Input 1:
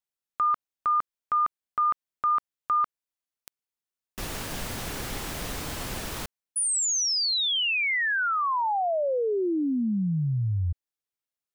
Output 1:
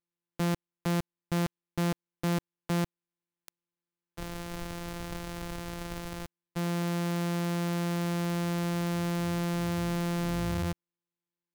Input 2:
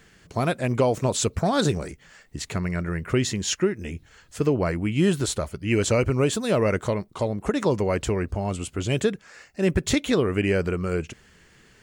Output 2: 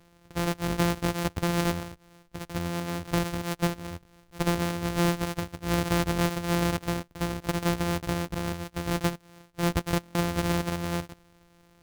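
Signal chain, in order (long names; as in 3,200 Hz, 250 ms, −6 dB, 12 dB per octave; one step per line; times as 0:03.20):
samples sorted by size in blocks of 256 samples
buffer that repeats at 0:10.01, samples 1,024, times 5
level −4.5 dB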